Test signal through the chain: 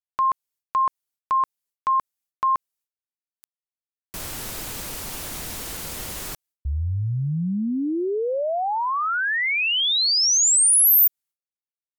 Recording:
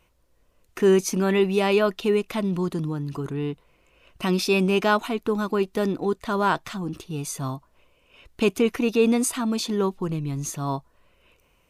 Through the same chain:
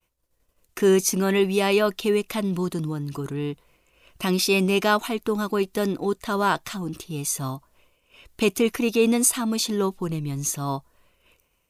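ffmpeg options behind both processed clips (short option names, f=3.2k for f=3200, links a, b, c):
-af "agate=range=-33dB:threshold=-56dB:ratio=3:detection=peak,aemphasis=mode=production:type=cd"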